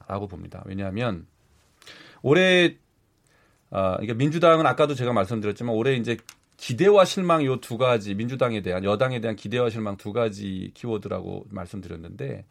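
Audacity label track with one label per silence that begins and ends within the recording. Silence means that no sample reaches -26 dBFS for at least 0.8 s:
1.150000	2.250000	silence
2.690000	3.730000	silence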